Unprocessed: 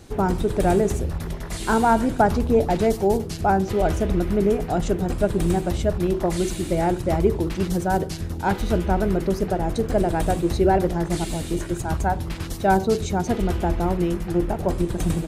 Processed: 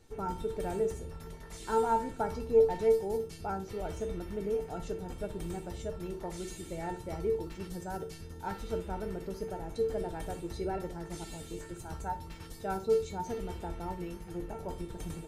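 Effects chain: feedback comb 450 Hz, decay 0.28 s, harmonics all, mix 90%; flutter echo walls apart 10.4 m, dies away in 0.23 s

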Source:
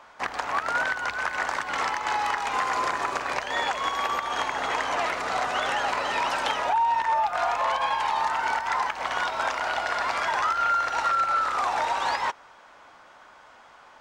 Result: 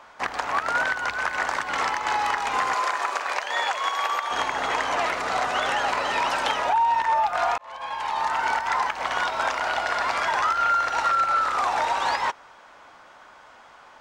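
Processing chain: 2.74–4.31 s: high-pass 540 Hz 12 dB/octave; 7.58–8.38 s: fade in; trim +2 dB

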